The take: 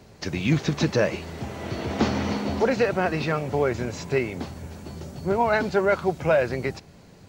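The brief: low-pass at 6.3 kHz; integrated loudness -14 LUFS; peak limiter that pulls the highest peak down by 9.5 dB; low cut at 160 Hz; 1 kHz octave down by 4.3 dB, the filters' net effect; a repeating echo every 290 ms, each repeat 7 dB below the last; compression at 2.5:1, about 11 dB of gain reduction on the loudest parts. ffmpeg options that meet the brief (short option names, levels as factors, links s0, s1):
-af "highpass=160,lowpass=6300,equalizer=f=1000:t=o:g=-6,acompressor=threshold=0.0178:ratio=2.5,alimiter=level_in=1.88:limit=0.0631:level=0:latency=1,volume=0.531,aecho=1:1:290|580|870|1160|1450:0.447|0.201|0.0905|0.0407|0.0183,volume=16.8"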